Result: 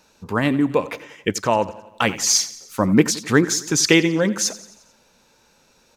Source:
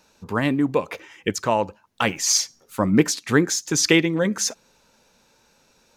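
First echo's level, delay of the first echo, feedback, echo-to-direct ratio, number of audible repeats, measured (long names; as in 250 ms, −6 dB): −17.5 dB, 88 ms, 56%, −16.0 dB, 4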